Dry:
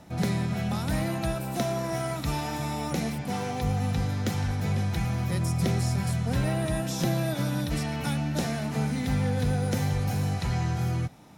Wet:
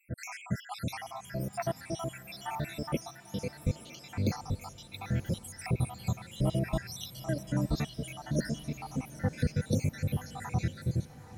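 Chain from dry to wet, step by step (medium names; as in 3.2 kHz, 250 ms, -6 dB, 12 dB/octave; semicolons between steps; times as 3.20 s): random holes in the spectrogram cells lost 78%; echo that smears into a reverb 920 ms, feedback 48%, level -15.5 dB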